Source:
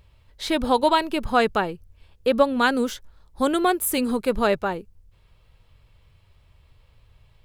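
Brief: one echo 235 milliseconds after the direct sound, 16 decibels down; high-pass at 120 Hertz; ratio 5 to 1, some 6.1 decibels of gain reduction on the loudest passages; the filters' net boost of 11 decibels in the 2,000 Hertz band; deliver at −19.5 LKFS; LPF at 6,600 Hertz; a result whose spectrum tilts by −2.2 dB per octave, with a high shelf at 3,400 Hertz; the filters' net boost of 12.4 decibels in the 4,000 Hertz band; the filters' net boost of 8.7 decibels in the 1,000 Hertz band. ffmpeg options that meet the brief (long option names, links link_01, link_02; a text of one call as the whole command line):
ffmpeg -i in.wav -af "highpass=120,lowpass=6600,equalizer=frequency=1000:width_type=o:gain=7.5,equalizer=frequency=2000:width_type=o:gain=8.5,highshelf=frequency=3400:gain=8,equalizer=frequency=4000:width_type=o:gain=7,acompressor=threshold=-12dB:ratio=5,aecho=1:1:235:0.158,volume=-0.5dB" out.wav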